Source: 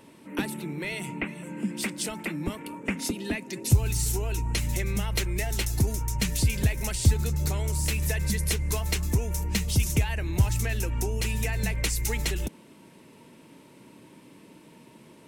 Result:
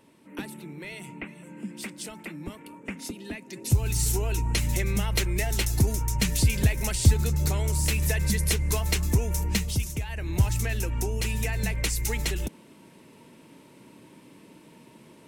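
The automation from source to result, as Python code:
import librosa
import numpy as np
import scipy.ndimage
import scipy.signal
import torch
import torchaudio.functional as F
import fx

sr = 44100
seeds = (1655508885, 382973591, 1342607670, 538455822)

y = fx.gain(x, sr, db=fx.line((3.4, -6.5), (4.03, 2.0), (9.52, 2.0), (9.98, -8.0), (10.32, 0.0)))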